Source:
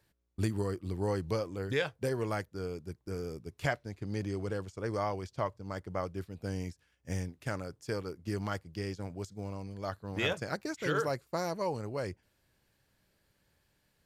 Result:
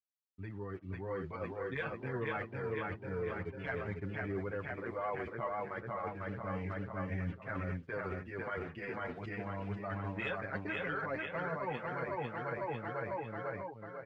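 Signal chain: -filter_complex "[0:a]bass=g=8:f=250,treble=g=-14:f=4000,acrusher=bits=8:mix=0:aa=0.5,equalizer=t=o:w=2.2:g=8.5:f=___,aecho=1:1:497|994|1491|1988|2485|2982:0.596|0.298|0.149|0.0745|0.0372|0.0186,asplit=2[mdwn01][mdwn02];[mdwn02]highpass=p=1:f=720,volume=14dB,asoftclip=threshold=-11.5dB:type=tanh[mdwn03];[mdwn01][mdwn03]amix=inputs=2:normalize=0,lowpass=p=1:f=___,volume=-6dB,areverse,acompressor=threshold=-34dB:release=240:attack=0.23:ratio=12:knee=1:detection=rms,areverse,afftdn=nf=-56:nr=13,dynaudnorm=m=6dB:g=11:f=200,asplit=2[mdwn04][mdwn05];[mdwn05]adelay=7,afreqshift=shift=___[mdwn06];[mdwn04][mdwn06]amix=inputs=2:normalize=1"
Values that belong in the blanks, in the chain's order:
2300, 1700, -0.29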